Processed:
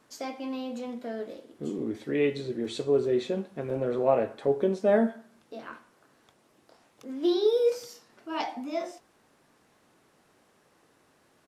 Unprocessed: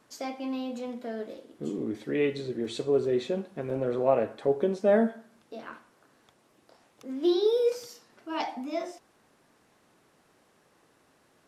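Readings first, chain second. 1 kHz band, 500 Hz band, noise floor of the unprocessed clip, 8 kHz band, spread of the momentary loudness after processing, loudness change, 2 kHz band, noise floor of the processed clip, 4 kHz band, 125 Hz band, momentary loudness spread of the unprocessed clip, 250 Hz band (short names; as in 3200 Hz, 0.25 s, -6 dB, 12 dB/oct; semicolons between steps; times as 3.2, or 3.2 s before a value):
+0.5 dB, +0.5 dB, -66 dBFS, n/a, 18 LU, +0.5 dB, 0.0 dB, -66 dBFS, +0.5 dB, +0.5 dB, 18 LU, 0.0 dB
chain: doubler 21 ms -13.5 dB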